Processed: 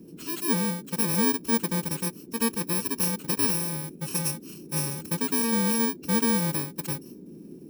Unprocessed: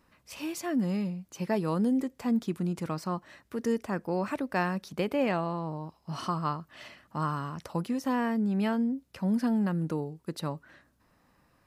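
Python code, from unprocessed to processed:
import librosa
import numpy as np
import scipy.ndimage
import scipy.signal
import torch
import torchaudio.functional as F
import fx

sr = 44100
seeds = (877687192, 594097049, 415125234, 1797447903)

y = fx.bit_reversed(x, sr, seeds[0], block=64)
y = fx.stretch_vocoder(y, sr, factor=0.66)
y = fx.dmg_noise_band(y, sr, seeds[1], low_hz=150.0, high_hz=380.0, level_db=-48.0)
y = F.gain(torch.from_numpy(y), 3.5).numpy()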